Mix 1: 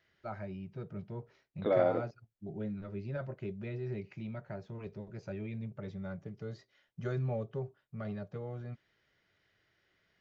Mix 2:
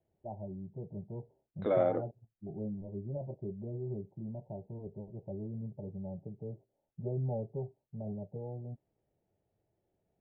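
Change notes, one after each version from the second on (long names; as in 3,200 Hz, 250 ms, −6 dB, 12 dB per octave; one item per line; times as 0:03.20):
first voice: add Butterworth low-pass 900 Hz 96 dB per octave
master: add high-frequency loss of the air 190 metres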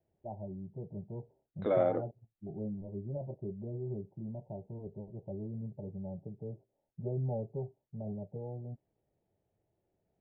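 nothing changed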